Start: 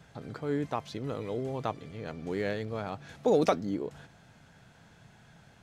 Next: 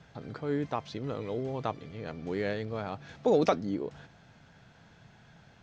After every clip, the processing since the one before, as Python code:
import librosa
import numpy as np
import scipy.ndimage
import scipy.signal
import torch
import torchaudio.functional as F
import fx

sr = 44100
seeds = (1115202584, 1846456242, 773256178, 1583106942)

y = scipy.signal.sosfilt(scipy.signal.butter(4, 6300.0, 'lowpass', fs=sr, output='sos'), x)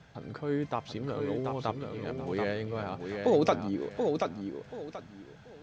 y = fx.echo_feedback(x, sr, ms=732, feedback_pct=26, wet_db=-5)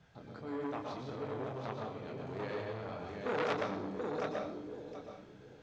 y = fx.chorus_voices(x, sr, voices=2, hz=0.66, base_ms=27, depth_ms=4.4, mix_pct=40)
y = fx.rev_plate(y, sr, seeds[0], rt60_s=0.71, hf_ratio=0.9, predelay_ms=105, drr_db=0.5)
y = fx.transformer_sat(y, sr, knee_hz=2000.0)
y = y * librosa.db_to_amplitude(-5.0)